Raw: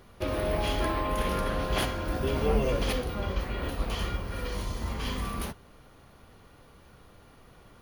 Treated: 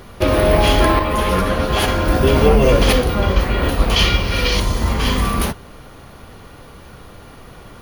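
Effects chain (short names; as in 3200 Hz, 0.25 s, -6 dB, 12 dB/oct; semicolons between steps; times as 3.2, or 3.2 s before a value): 3.96–4.6 band shelf 3600 Hz +9 dB; maximiser +16 dB; 0.99–1.88 ensemble effect; gain -1 dB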